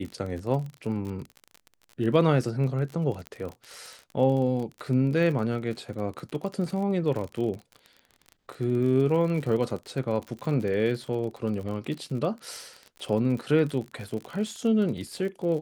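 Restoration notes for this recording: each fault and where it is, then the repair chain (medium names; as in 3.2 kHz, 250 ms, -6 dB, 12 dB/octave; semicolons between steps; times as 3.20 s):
crackle 40 per s -33 dBFS
3.27 s: pop -22 dBFS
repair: de-click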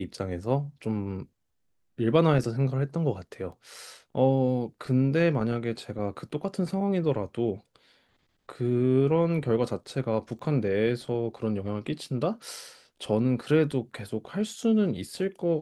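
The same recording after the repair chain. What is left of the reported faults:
nothing left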